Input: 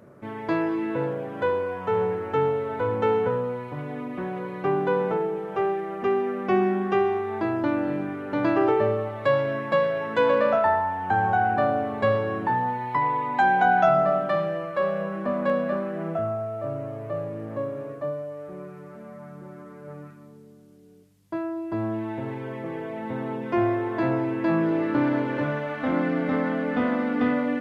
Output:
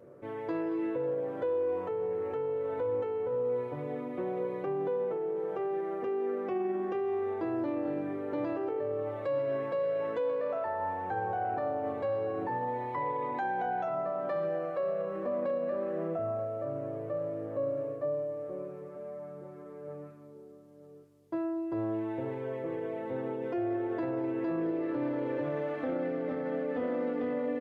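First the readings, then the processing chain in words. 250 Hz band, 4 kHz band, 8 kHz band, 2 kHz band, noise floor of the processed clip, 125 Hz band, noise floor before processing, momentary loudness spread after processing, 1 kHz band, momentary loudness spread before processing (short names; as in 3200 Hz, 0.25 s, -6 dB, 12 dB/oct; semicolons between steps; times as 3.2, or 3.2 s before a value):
-8.5 dB, under -15 dB, n/a, -15.0 dB, -50 dBFS, -11.5 dB, -47 dBFS, 5 LU, -11.5 dB, 12 LU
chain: bell 460 Hz +12.5 dB 0.87 oct; limiter -17 dBFS, peak gain reduction 14 dB; notch comb 210 Hz; outdoor echo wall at 160 m, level -14 dB; gain -8 dB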